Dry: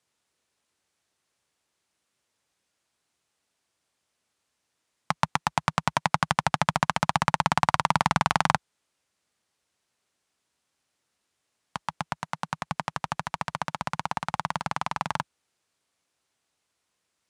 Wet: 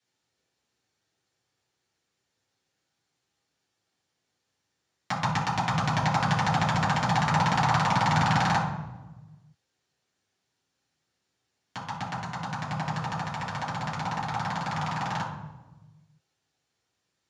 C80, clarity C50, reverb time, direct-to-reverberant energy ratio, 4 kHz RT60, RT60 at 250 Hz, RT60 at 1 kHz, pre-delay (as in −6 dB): 7.5 dB, 4.5 dB, 1.1 s, −7.5 dB, 0.70 s, 1.4 s, 1.0 s, 3 ms